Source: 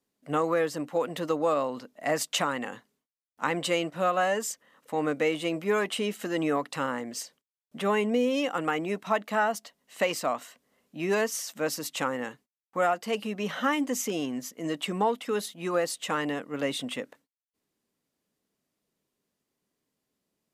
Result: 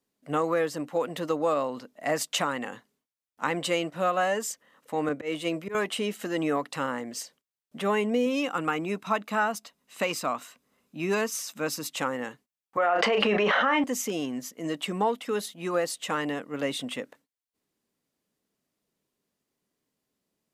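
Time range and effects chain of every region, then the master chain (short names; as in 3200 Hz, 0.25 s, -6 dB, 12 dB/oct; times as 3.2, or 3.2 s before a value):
5.09–5.75 auto swell 0.112 s + notch 810 Hz, Q 15 + three-band expander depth 70%
8.26–11.89 short-mantissa float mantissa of 8-bit + comb 0.8 ms, depth 31%
12.77–13.84 BPF 440–2300 Hz + doubler 34 ms -10.5 dB + fast leveller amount 100%
whole clip: dry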